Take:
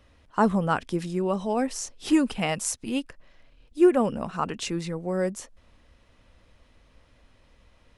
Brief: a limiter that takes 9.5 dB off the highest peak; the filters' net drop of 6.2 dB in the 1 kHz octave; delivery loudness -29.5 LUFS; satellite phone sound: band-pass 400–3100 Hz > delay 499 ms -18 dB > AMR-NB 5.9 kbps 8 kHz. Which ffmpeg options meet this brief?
-af "equalizer=f=1000:t=o:g=-8,alimiter=limit=0.106:level=0:latency=1,highpass=400,lowpass=3100,aecho=1:1:499:0.126,volume=2.24" -ar 8000 -c:a libopencore_amrnb -b:a 5900

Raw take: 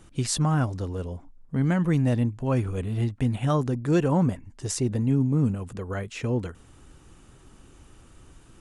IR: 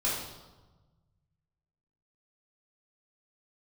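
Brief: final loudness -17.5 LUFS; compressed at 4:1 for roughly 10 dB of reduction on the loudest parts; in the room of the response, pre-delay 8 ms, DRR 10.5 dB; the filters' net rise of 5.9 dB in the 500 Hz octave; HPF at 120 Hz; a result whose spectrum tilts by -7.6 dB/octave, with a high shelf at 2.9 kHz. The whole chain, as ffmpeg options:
-filter_complex "[0:a]highpass=120,equalizer=f=500:t=o:g=7.5,highshelf=f=2900:g=-6.5,acompressor=threshold=0.0447:ratio=4,asplit=2[s0][s1];[1:a]atrim=start_sample=2205,adelay=8[s2];[s1][s2]afir=irnorm=-1:irlink=0,volume=0.119[s3];[s0][s3]amix=inputs=2:normalize=0,volume=4.73"

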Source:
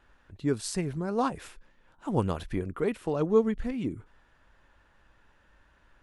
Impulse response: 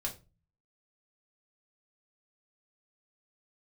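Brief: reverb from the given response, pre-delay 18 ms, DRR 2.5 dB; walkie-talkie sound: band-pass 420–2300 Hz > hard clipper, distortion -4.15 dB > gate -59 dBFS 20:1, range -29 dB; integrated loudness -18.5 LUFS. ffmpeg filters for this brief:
-filter_complex "[0:a]asplit=2[s0][s1];[1:a]atrim=start_sample=2205,adelay=18[s2];[s1][s2]afir=irnorm=-1:irlink=0,volume=0.631[s3];[s0][s3]amix=inputs=2:normalize=0,highpass=420,lowpass=2300,asoftclip=type=hard:threshold=0.0266,agate=range=0.0355:threshold=0.00112:ratio=20,volume=8.91"

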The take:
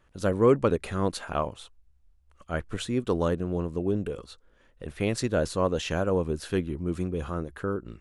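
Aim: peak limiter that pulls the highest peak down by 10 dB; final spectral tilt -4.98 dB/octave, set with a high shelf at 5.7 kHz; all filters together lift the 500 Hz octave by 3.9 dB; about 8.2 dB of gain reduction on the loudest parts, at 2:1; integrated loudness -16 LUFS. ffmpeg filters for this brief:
-af "equalizer=f=500:t=o:g=4.5,highshelf=f=5700:g=9,acompressor=threshold=0.0447:ratio=2,volume=8.91,alimiter=limit=0.531:level=0:latency=1"

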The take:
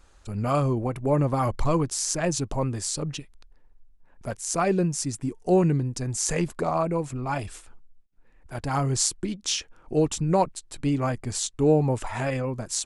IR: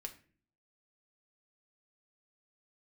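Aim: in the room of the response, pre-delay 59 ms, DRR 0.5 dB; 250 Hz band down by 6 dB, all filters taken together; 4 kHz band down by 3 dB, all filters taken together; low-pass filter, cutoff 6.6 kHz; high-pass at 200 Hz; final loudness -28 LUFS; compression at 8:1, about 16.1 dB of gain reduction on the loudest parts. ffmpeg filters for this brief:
-filter_complex "[0:a]highpass=200,lowpass=6600,equalizer=f=250:t=o:g=-6,equalizer=f=4000:t=o:g=-3,acompressor=threshold=0.0178:ratio=8,asplit=2[s0][s1];[1:a]atrim=start_sample=2205,adelay=59[s2];[s1][s2]afir=irnorm=-1:irlink=0,volume=1.41[s3];[s0][s3]amix=inputs=2:normalize=0,volume=2.66"

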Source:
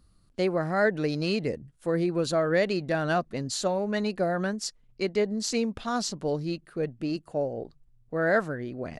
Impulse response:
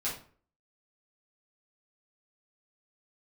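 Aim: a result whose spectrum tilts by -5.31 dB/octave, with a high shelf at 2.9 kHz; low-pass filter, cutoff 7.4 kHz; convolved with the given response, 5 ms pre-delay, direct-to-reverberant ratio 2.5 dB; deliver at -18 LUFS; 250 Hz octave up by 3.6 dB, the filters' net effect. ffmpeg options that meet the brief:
-filter_complex "[0:a]lowpass=7400,equalizer=f=250:t=o:g=5,highshelf=f=2900:g=4.5,asplit=2[s0][s1];[1:a]atrim=start_sample=2205,adelay=5[s2];[s1][s2]afir=irnorm=-1:irlink=0,volume=0.447[s3];[s0][s3]amix=inputs=2:normalize=0,volume=2.11"

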